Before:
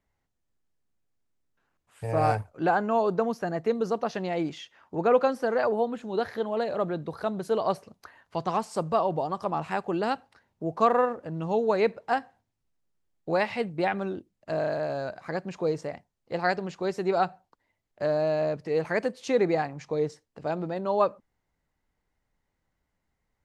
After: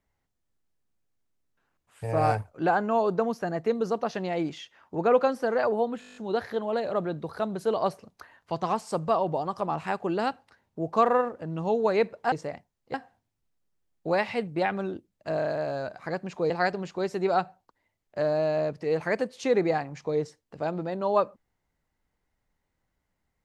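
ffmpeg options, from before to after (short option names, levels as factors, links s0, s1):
-filter_complex "[0:a]asplit=12[s0][s1][s2][s3][s4][s5][s6][s7][s8][s9][s10][s11];[s0]atrim=end=6.022[s12];[s1]atrim=start=5.998:end=6.022[s13];[s2]atrim=start=5.998:end=6.022[s14];[s3]atrim=start=5.998:end=6.022[s15];[s4]atrim=start=5.998:end=6.022[s16];[s5]atrim=start=5.998:end=6.022[s17];[s6]atrim=start=5.998:end=6.022[s18];[s7]atrim=start=5.998:end=6.022[s19];[s8]atrim=start=5.998:end=12.162[s20];[s9]atrim=start=15.718:end=16.342[s21];[s10]atrim=start=12.158:end=15.722[s22];[s11]atrim=start=16.338[s23];[s12][s13]acrossfade=d=0.004:c1=hsin:c2=hsin[s24];[s24][s14]acrossfade=d=0.004:c1=hsin:c2=hsin[s25];[s25][s15]acrossfade=d=0.004:c1=hsin:c2=hsin[s26];[s26][s16]acrossfade=d=0.004:c1=hsin:c2=hsin[s27];[s27][s17]acrossfade=d=0.004:c1=hsin:c2=hsin[s28];[s28][s18]acrossfade=d=0.004:c1=hsin:c2=hsin[s29];[s29][s19]acrossfade=d=0.004:c1=hsin:c2=hsin[s30];[s30][s20]acrossfade=d=0.004:c1=hsin:c2=hsin[s31];[s31][s21]acrossfade=d=0.004:c1=hsin:c2=hsin[s32];[s32][s22]acrossfade=d=0.004:c1=hsin:c2=hsin[s33];[s33][s23]acrossfade=d=0.004:c1=hsin:c2=hsin"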